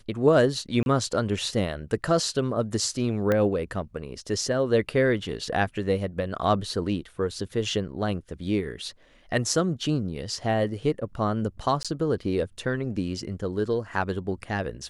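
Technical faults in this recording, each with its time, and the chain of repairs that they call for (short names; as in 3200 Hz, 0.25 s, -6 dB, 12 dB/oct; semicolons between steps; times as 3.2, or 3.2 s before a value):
0.83–0.86 gap 31 ms
3.32 pop -12 dBFS
11.83–11.85 gap 16 ms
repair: de-click; interpolate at 0.83, 31 ms; interpolate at 11.83, 16 ms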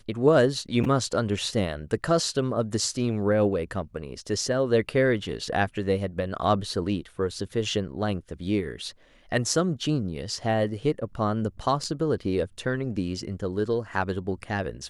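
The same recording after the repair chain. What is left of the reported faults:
3.32 pop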